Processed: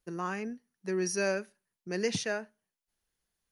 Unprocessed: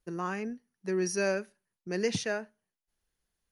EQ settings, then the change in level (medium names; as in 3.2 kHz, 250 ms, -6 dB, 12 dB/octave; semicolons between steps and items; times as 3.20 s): tone controls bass +6 dB, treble +1 dB; bass shelf 200 Hz -11 dB; 0.0 dB